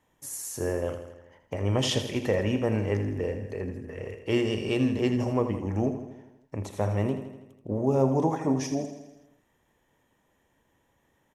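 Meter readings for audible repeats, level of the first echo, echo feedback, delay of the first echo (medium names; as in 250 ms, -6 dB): 6, -10.0 dB, 59%, 81 ms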